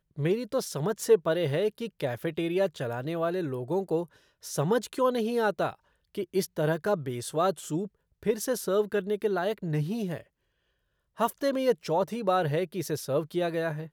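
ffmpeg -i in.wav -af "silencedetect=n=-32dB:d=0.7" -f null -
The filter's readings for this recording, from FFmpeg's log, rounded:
silence_start: 10.18
silence_end: 11.20 | silence_duration: 1.02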